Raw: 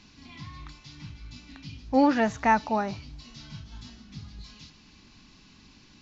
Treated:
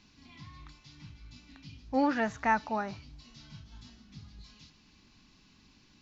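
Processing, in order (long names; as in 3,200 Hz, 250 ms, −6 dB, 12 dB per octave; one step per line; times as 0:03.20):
dynamic equaliser 1,500 Hz, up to +5 dB, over −44 dBFS, Q 1.5
level −7 dB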